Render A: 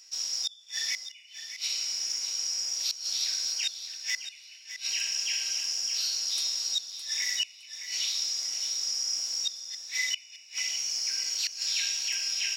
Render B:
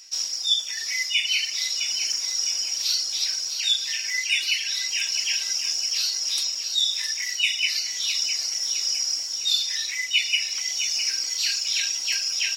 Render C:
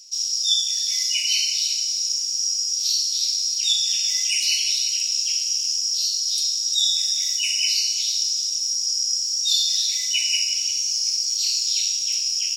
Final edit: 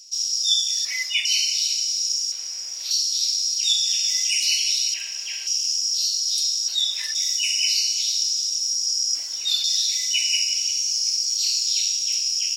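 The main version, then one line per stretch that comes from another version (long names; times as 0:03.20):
C
0:00.85–0:01.25: punch in from B
0:02.32–0:02.91: punch in from A
0:04.94–0:05.47: punch in from A
0:06.68–0:07.15: punch in from B
0:09.15–0:09.64: punch in from B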